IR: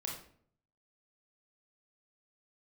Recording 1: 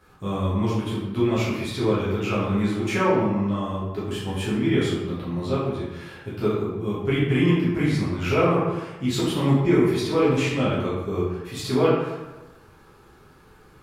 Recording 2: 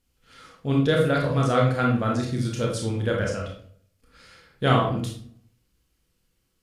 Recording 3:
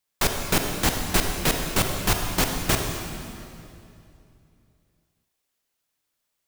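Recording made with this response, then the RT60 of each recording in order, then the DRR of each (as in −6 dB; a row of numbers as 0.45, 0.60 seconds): 2; 1.1, 0.55, 2.7 seconds; −8.5, −1.5, 3.0 decibels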